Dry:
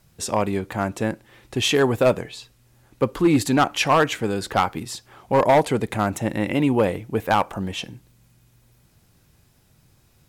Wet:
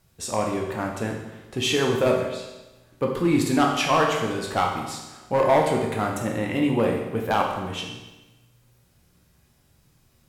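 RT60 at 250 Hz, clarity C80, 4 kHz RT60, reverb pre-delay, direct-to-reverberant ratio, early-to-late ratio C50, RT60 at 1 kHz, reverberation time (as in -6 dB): 1.1 s, 6.0 dB, 1.0 s, 13 ms, 0.0 dB, 4.0 dB, 1.1 s, 1.1 s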